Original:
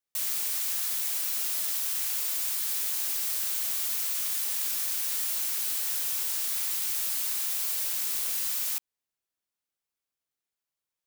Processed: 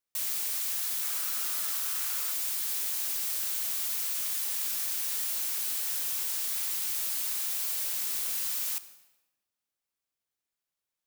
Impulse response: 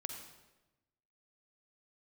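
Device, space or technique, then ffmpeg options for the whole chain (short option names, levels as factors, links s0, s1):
saturated reverb return: -filter_complex "[0:a]asplit=2[s0][s1];[1:a]atrim=start_sample=2205[s2];[s1][s2]afir=irnorm=-1:irlink=0,asoftclip=type=tanh:threshold=0.0178,volume=0.631[s3];[s0][s3]amix=inputs=2:normalize=0,asettb=1/sr,asplit=3[s4][s5][s6];[s4]atrim=end=1.014[s7];[s5]atrim=start=1.01:end=2.32,asetpts=PTS-STARTPTS,afade=t=in:d=0.004:c=qsin,afade=t=out:st=1.306:d=0.004:c=qsin,equalizer=f=1300:w=2.3:g=8[s8];[s6]atrim=start=2.316[s9];[s7][s8]acrossfade=d=0.004:c1=hsin:c2=qsin[s10];[s10][s9]acrossfade=d=0.004:c1=qsin:c2=hsin,volume=0.668"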